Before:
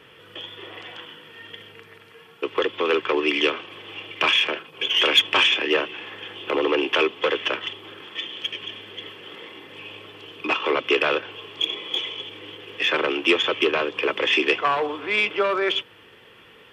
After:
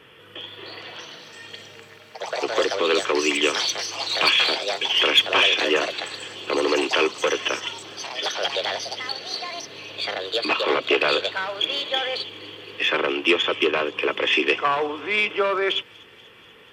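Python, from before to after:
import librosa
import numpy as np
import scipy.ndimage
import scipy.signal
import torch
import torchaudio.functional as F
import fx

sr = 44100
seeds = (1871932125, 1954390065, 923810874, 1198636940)

y = fx.echo_pitch(x, sr, ms=394, semitones=5, count=3, db_per_echo=-6.0)
y = fx.echo_wet_highpass(y, sr, ms=242, feedback_pct=73, hz=5200.0, wet_db=-15)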